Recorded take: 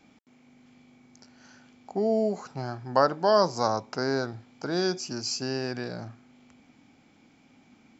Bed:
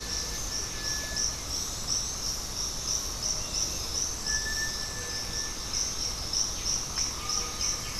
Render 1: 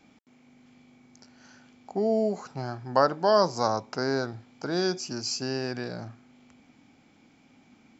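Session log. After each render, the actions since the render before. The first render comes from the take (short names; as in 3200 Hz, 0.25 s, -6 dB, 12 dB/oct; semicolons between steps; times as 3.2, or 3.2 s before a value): nothing audible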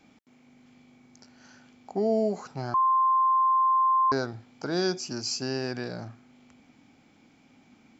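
2.74–4.12 bleep 1050 Hz -19 dBFS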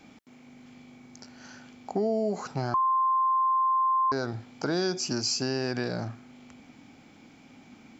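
in parallel at 0 dB: limiter -23 dBFS, peak gain reduction 8 dB; on the sum: compressor 3:1, threshold -25 dBFS, peak gain reduction 6.5 dB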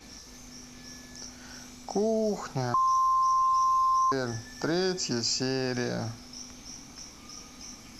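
add bed -15.5 dB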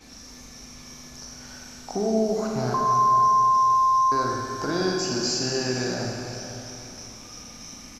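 feedback echo 0.505 s, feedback 35%, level -13.5 dB; Schroeder reverb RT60 2.5 s, combs from 32 ms, DRR -1 dB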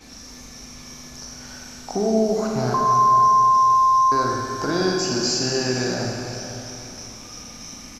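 gain +3.5 dB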